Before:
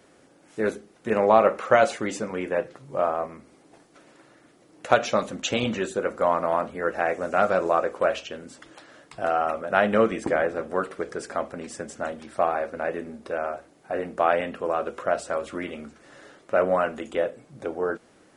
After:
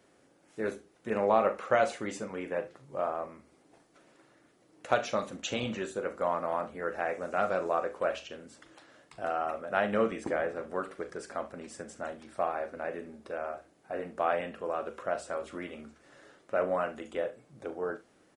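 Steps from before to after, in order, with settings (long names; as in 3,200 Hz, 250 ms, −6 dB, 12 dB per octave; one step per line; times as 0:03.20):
ambience of single reflections 40 ms −12 dB, 68 ms −18 dB
level −8 dB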